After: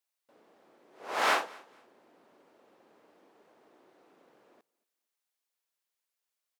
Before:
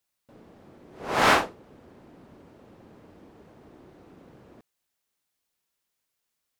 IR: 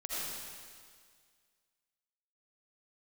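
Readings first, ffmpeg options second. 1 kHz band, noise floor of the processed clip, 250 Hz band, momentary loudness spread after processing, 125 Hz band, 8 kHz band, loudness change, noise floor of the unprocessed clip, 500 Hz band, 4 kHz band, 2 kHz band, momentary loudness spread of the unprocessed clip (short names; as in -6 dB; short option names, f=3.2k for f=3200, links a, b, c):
-6.5 dB, under -85 dBFS, -15.0 dB, 18 LU, under -25 dB, -6.5 dB, -7.0 dB, -81 dBFS, -8.0 dB, -6.5 dB, -6.5 dB, 18 LU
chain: -filter_complex "[0:a]highpass=440,asplit=2[a][b];[b]aecho=0:1:230|460:0.0631|0.0145[c];[a][c]amix=inputs=2:normalize=0,volume=-6.5dB"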